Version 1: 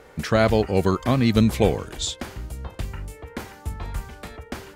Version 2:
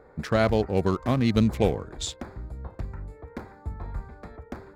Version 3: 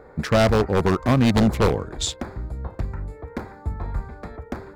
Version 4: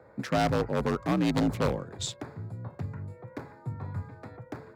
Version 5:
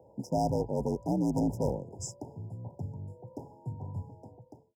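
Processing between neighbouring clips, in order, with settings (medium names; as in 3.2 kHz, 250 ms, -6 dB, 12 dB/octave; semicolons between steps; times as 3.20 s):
local Wiener filter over 15 samples; trim -3.5 dB
wavefolder -17 dBFS; trim +6.5 dB
frequency shift +50 Hz; trim -8.5 dB
fade out at the end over 0.66 s; FFT band-reject 990–4900 Hz; trim -2.5 dB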